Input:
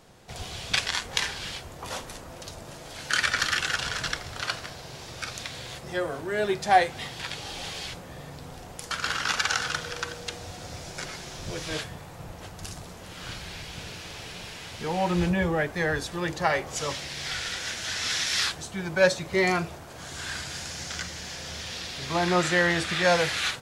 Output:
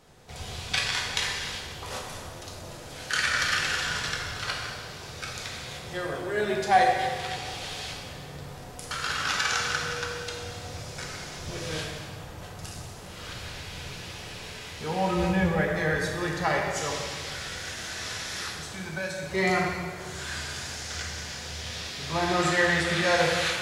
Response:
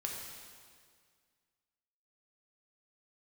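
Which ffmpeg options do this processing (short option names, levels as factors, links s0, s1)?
-filter_complex "[0:a]asettb=1/sr,asplit=3[s0][s1][s2];[s0]atrim=end=17.144[s3];[s1]atrim=start=17.14:end=19.23,asetpts=PTS-STARTPTS,afade=t=in:d=0.004:c=qsin,afade=t=out:st=2.086:d=0.004:c=qsin,acrossover=split=1300|7800[s4][s5][s6];[s4]acompressor=threshold=0.0178:ratio=4[s7];[s5]acompressor=threshold=0.0141:ratio=4[s8];[s6]acompressor=threshold=0.00631:ratio=4[s9];[s7][s8][s9]amix=inputs=3:normalize=0[s10];[s2]atrim=start=19.226[s11];[s3][s10]acrossfade=d=0.004:c1=hsin:c2=qsin[s12];[s12][s11]acrossfade=d=0.004:c1=qsin:c2=hsin[s13];[1:a]atrim=start_sample=2205,asetrate=48510,aresample=44100[s14];[s13][s14]afir=irnorm=-1:irlink=0"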